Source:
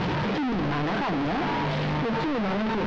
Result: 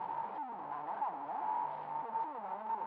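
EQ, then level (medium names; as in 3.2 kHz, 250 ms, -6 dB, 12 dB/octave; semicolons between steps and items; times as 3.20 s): band-pass filter 880 Hz, Q 7.6; distance through air 130 m; -1.5 dB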